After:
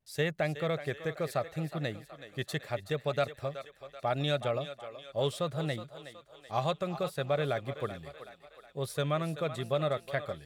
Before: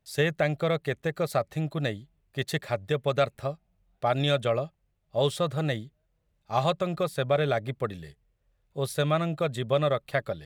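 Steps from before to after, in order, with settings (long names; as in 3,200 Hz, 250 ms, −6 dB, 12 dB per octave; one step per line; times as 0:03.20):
feedback echo with a high-pass in the loop 375 ms, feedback 57%, high-pass 440 Hz, level −11 dB
pitch vibrato 0.74 Hz 41 cents
level −5.5 dB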